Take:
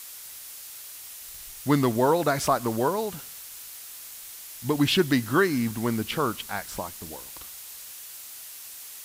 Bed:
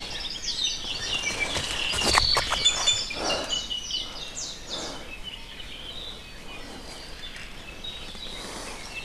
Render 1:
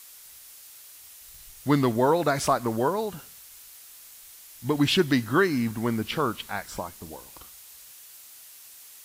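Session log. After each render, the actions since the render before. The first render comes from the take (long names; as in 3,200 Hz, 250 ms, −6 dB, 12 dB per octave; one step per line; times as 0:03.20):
noise reduction from a noise print 6 dB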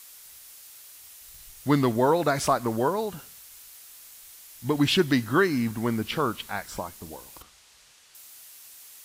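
0:07.42–0:08.15: high-frequency loss of the air 75 metres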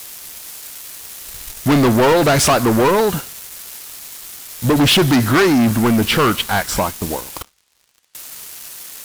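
leveller curve on the samples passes 5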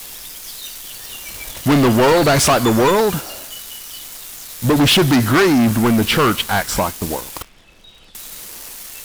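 mix in bed −8.5 dB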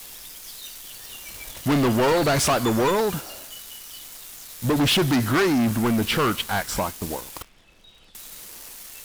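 level −7 dB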